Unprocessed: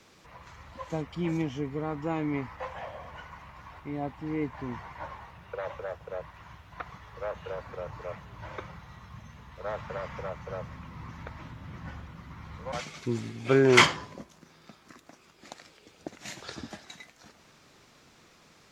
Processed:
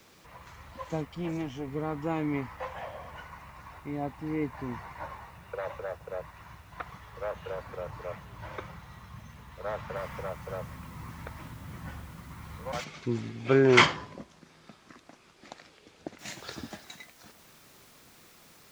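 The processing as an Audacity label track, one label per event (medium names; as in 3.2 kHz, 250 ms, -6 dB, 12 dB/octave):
1.050000	1.680000	valve stage drive 24 dB, bias 0.55
3.190000	6.700000	band-stop 3.2 kHz
9.960000	9.960000	noise floor step -68 dB -60 dB
12.840000	16.190000	distance through air 78 m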